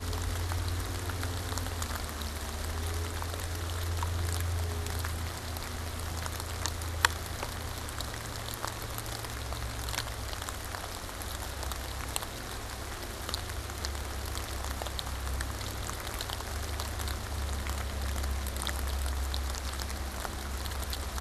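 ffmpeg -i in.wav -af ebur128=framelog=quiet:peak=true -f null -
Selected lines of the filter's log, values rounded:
Integrated loudness:
  I:         -35.5 LUFS
  Threshold: -45.5 LUFS
Loudness range:
  LRA:         2.6 LU
  Threshold: -55.5 LUFS
  LRA low:   -37.0 LUFS
  LRA high:  -34.3 LUFS
True peak:
  Peak:       -2.7 dBFS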